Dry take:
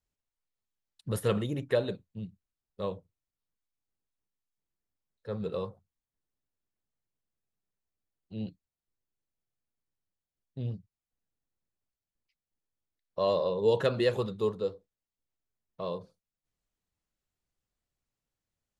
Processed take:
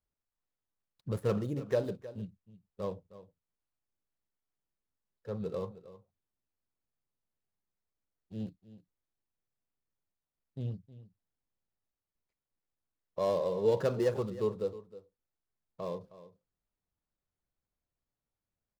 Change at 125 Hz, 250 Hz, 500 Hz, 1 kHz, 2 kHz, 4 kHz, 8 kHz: −2.0 dB, −2.0 dB, −2.5 dB, −3.5 dB, −7.5 dB, −10.0 dB, can't be measured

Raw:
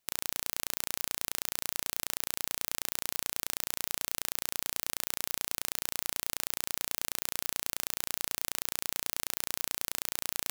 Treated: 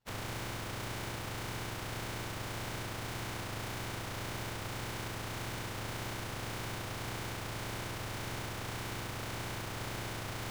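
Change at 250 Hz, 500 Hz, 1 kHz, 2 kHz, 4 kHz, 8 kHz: +7.5, +4.5, +3.0, 0.0, −5.5, −11.5 decibels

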